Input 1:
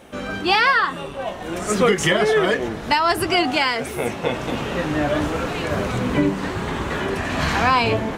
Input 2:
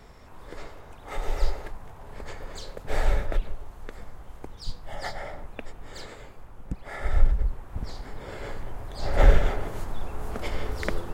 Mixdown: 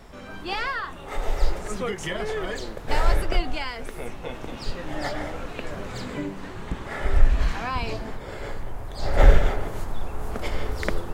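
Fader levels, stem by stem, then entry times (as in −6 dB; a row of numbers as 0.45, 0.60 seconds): −12.5, +2.5 decibels; 0.00, 0.00 seconds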